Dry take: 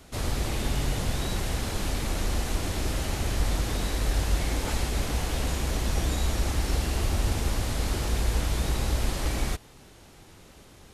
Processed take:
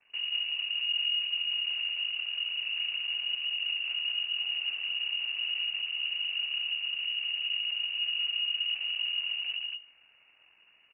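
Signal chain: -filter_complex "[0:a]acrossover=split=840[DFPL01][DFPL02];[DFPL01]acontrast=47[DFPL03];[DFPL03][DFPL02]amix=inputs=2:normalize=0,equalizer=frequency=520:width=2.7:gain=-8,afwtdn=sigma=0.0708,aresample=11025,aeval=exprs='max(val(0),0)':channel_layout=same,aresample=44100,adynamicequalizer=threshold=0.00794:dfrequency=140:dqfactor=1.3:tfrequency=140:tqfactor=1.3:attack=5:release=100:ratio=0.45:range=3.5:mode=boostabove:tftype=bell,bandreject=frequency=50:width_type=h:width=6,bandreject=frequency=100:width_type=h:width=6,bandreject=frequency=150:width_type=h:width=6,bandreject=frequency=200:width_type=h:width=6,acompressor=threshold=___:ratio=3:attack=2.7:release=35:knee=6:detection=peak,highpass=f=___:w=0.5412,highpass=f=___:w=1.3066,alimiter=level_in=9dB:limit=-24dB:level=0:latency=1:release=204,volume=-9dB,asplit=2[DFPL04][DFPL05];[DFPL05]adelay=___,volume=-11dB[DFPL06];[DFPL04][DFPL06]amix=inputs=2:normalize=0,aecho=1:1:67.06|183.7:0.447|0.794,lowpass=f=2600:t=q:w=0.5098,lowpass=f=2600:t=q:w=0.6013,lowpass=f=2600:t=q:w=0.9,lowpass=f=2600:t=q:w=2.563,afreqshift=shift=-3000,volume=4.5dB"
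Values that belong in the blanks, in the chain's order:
-25dB, 100, 100, 23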